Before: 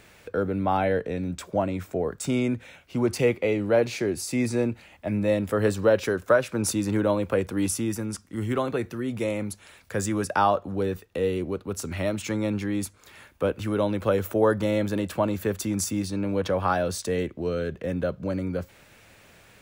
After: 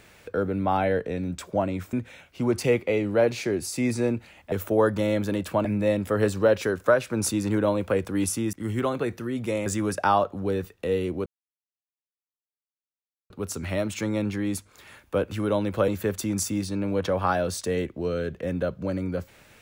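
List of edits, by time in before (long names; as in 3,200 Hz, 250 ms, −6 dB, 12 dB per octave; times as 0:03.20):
0:01.93–0:02.48: remove
0:07.95–0:08.26: remove
0:09.39–0:09.98: remove
0:11.58: splice in silence 2.04 s
0:14.16–0:15.29: move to 0:05.07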